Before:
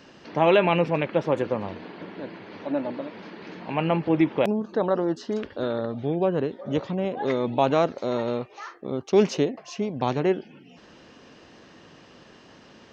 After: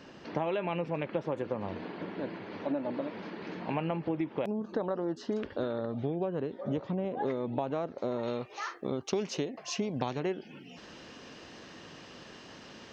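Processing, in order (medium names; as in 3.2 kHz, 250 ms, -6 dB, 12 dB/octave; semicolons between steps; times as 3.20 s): treble shelf 2 kHz -4 dB, from 6.70 s -9.5 dB, from 8.23 s +4.5 dB; compression 16:1, threshold -28 dBFS, peak gain reduction 16 dB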